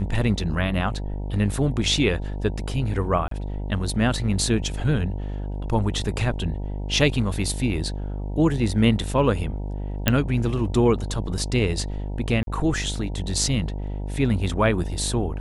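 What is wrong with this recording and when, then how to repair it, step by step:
buzz 50 Hz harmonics 19 -29 dBFS
3.28–3.31 s: dropout 33 ms
10.08 s: pop -2 dBFS
12.43–12.47 s: dropout 42 ms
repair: de-click; de-hum 50 Hz, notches 19; interpolate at 3.28 s, 33 ms; interpolate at 12.43 s, 42 ms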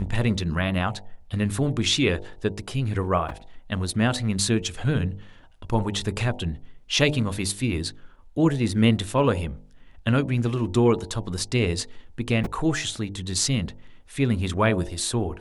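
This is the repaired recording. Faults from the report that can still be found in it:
10.08 s: pop

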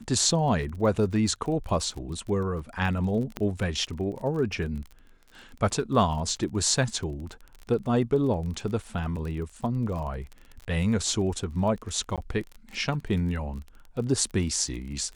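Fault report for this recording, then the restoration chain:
crackle 27 per s -35 dBFS
3.37 s: pop -16 dBFS
12.16–12.18 s: dropout 17 ms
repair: de-click; interpolate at 12.16 s, 17 ms

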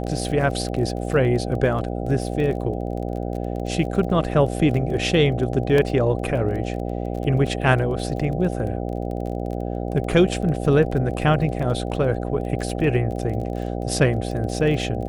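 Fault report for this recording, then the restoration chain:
buzz 60 Hz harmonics 13 -27 dBFS
crackle 24 per s -30 dBFS
5.78 s: dropout 2.7 ms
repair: de-click; de-hum 60 Hz, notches 13; interpolate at 5.78 s, 2.7 ms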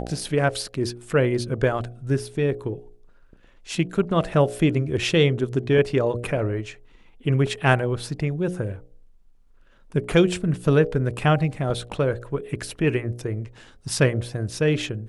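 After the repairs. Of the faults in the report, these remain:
nothing left

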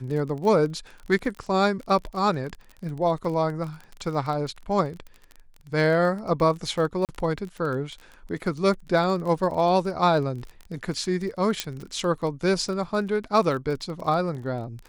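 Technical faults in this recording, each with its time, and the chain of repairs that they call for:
crackle 29 per s -32 dBFS
7.05–7.09 s: dropout 38 ms
11.60 s: pop -9 dBFS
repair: de-click; interpolate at 7.05 s, 38 ms

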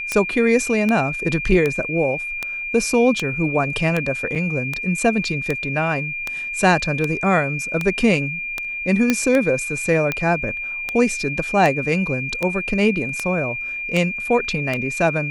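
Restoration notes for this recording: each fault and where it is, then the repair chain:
tick 78 rpm -8 dBFS
whine 2.4 kHz -25 dBFS
4.35–4.36 s: dropout 6.5 ms
9.10 s: pop -3 dBFS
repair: de-click; band-stop 2.4 kHz, Q 30; interpolate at 4.35 s, 6.5 ms

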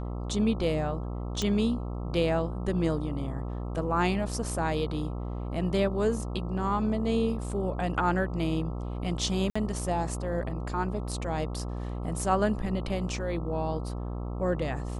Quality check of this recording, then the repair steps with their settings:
buzz 60 Hz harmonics 22 -34 dBFS
1.42 s: pop -16 dBFS
9.50–9.55 s: dropout 55 ms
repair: de-click; de-hum 60 Hz, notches 22; interpolate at 9.50 s, 55 ms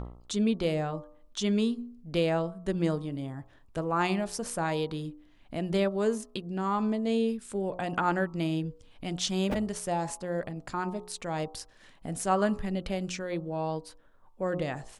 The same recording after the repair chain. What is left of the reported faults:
nothing left

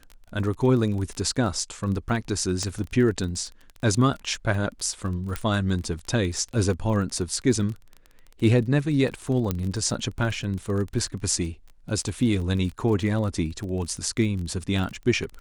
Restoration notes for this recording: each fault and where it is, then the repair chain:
crackle 27 per s -31 dBFS
2.63 s: pop -16 dBFS
5.36 s: pop -13 dBFS
9.51 s: pop -11 dBFS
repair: de-click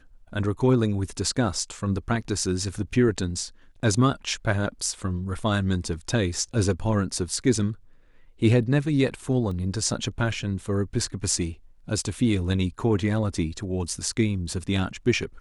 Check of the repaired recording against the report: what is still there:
2.63 s: pop
9.51 s: pop

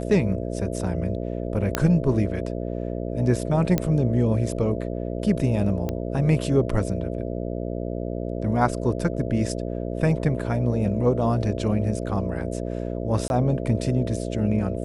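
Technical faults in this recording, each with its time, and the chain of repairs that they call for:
buzz 60 Hz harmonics 11 -29 dBFS
1.75 s: pop -6 dBFS
3.78 s: pop -9 dBFS
5.89 s: pop -15 dBFS
13.28–13.30 s: dropout 21 ms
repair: de-click; de-hum 60 Hz, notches 11; interpolate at 13.28 s, 21 ms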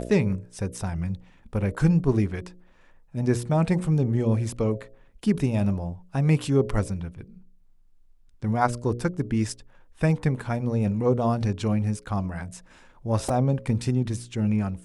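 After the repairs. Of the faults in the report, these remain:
3.78 s: pop

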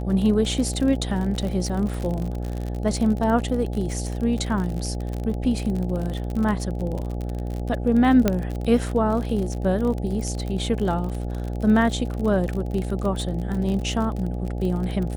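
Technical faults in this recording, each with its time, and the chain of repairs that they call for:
buzz 60 Hz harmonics 14 -28 dBFS
crackle 46 per s -27 dBFS
8.28 s: pop -6 dBFS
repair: de-click; de-hum 60 Hz, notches 14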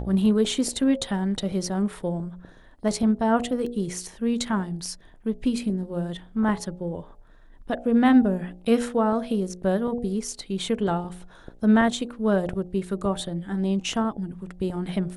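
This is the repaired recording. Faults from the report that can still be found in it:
nothing left

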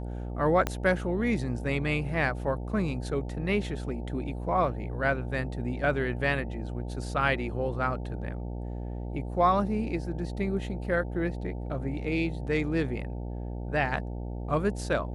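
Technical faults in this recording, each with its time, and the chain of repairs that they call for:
buzz 60 Hz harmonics 15 -35 dBFS
0.67 s: pop -13 dBFS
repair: de-click; de-hum 60 Hz, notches 15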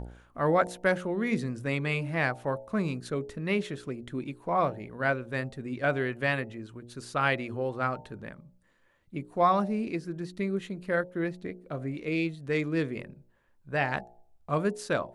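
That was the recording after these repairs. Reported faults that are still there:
0.67 s: pop

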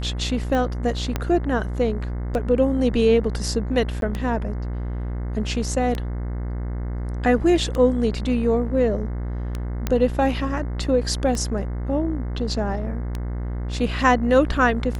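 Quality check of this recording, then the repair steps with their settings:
buzz 60 Hz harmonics 36 -27 dBFS
tick 33 1/3 rpm -14 dBFS
1.16 s: pop -9 dBFS
4.01–4.02 s: dropout 12 ms
9.87 s: pop -9 dBFS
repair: de-click; de-hum 60 Hz, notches 36; interpolate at 4.01 s, 12 ms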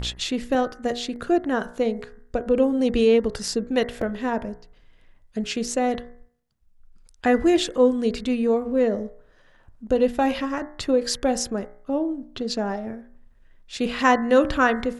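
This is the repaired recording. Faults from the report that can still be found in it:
1.16 s: pop

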